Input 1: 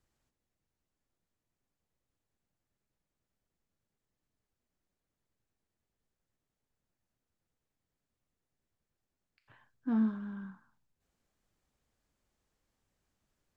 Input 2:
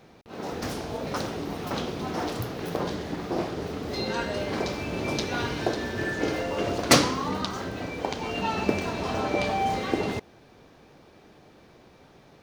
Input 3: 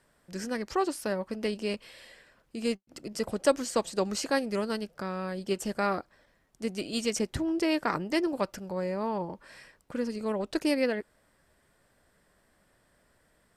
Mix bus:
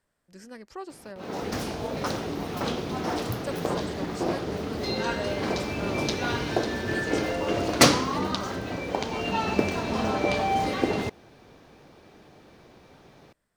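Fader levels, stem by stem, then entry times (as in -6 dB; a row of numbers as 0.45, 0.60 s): -5.5, +1.0, -11.0 dB; 0.00, 0.90, 0.00 s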